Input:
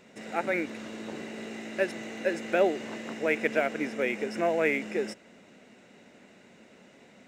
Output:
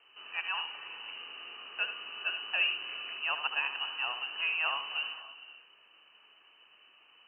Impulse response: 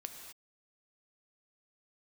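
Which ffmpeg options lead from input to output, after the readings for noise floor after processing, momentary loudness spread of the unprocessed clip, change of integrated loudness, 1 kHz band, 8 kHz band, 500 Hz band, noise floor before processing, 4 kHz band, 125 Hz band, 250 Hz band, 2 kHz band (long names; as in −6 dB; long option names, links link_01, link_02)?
−62 dBFS, 13 LU, −3.0 dB, −4.0 dB, below −30 dB, −24.5 dB, −56 dBFS, +11.5 dB, below −25 dB, below −30 dB, −0.5 dB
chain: -filter_complex "[0:a]asplit=2[link_01][link_02];[1:a]atrim=start_sample=2205,asetrate=22932,aresample=44100,adelay=75[link_03];[link_02][link_03]afir=irnorm=-1:irlink=0,volume=-8.5dB[link_04];[link_01][link_04]amix=inputs=2:normalize=0,lowpass=frequency=2700:width_type=q:width=0.5098,lowpass=frequency=2700:width_type=q:width=0.6013,lowpass=frequency=2700:width_type=q:width=0.9,lowpass=frequency=2700:width_type=q:width=2.563,afreqshift=-3200,volume=-6.5dB"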